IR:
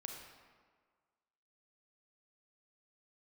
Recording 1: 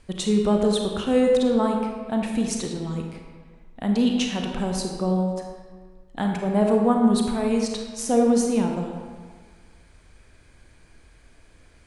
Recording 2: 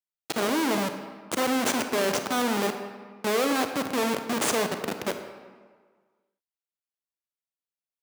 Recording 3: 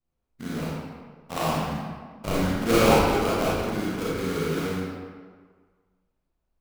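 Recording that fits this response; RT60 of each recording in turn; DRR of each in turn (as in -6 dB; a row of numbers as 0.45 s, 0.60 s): 1; 1.7 s, 1.6 s, 1.7 s; 1.5 dB, 6.5 dB, -8.0 dB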